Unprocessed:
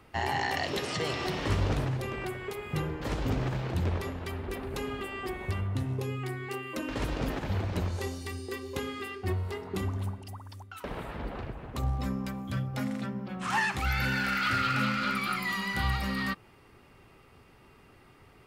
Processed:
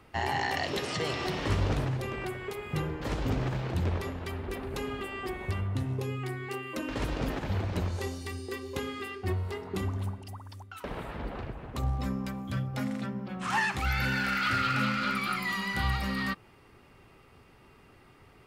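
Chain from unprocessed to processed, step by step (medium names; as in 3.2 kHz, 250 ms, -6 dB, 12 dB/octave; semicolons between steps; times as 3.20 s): treble shelf 12 kHz -3 dB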